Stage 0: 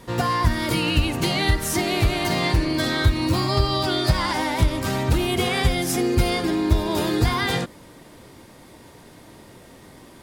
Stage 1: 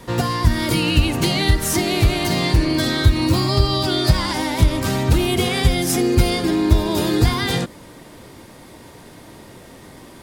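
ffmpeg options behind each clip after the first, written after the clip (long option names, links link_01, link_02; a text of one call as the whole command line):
ffmpeg -i in.wav -filter_complex "[0:a]acrossover=split=440|3000[link_01][link_02][link_03];[link_02]acompressor=threshold=-31dB:ratio=3[link_04];[link_01][link_04][link_03]amix=inputs=3:normalize=0,volume=4.5dB" out.wav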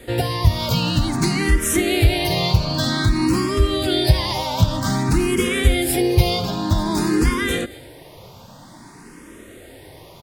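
ffmpeg -i in.wav -filter_complex "[0:a]aecho=1:1:226:0.0841,asplit=2[link_01][link_02];[link_02]afreqshift=0.52[link_03];[link_01][link_03]amix=inputs=2:normalize=1,volume=2.5dB" out.wav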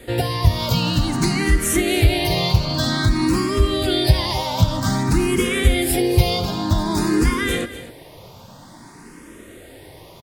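ffmpeg -i in.wav -af "aecho=1:1:247:0.188" out.wav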